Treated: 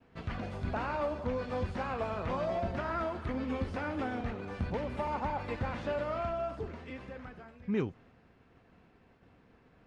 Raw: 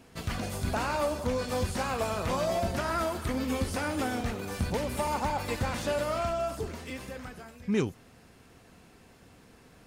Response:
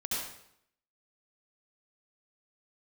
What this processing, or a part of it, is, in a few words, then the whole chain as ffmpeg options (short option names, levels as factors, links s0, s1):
hearing-loss simulation: -af "lowpass=2500,agate=range=0.0224:threshold=0.00224:ratio=3:detection=peak,volume=0.631"